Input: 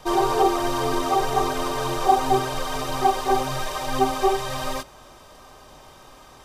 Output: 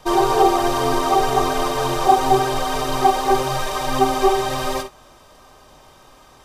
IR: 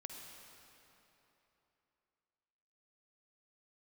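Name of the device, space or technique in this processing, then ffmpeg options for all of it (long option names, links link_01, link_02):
keyed gated reverb: -filter_complex "[0:a]asplit=3[link_01][link_02][link_03];[1:a]atrim=start_sample=2205[link_04];[link_02][link_04]afir=irnorm=-1:irlink=0[link_05];[link_03]apad=whole_len=284010[link_06];[link_05][link_06]sidechaingate=range=-33dB:threshold=-35dB:ratio=16:detection=peak,volume=3dB[link_07];[link_01][link_07]amix=inputs=2:normalize=0,volume=-1dB"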